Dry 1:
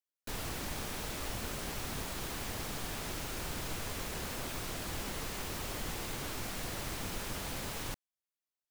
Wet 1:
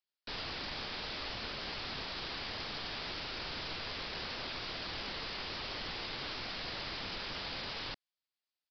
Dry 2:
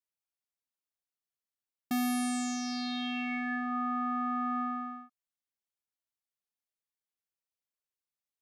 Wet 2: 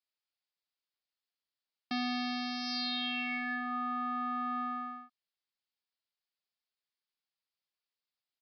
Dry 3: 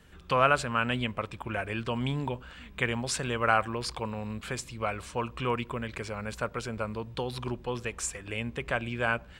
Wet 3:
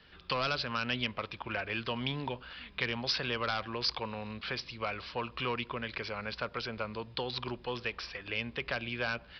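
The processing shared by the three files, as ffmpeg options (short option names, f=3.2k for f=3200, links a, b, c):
-filter_complex "[0:a]aresample=11025,asoftclip=type=tanh:threshold=-18.5dB,aresample=44100,aemphasis=mode=production:type=75fm,acrossover=split=420|3000[a][b][c];[b]acompressor=threshold=-32dB:ratio=6[d];[a][d][c]amix=inputs=3:normalize=0,lowshelf=f=280:g=-7.5"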